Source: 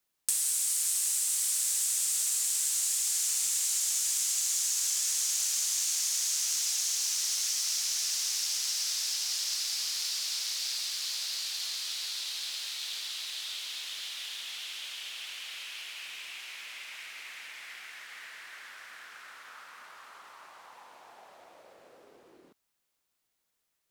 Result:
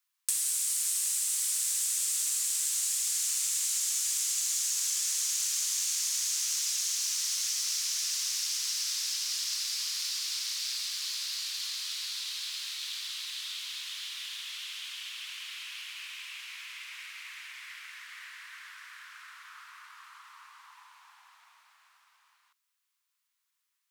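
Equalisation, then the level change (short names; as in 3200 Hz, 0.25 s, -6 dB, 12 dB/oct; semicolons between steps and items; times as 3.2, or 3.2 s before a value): elliptic high-pass 1000 Hz, stop band 50 dB; 0.0 dB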